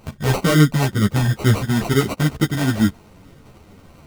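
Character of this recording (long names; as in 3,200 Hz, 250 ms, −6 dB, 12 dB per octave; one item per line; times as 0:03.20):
phaser sweep stages 2, 2.2 Hz, lowest notch 480–1,100 Hz
aliases and images of a low sample rate 1,700 Hz, jitter 0%
a shimmering, thickened sound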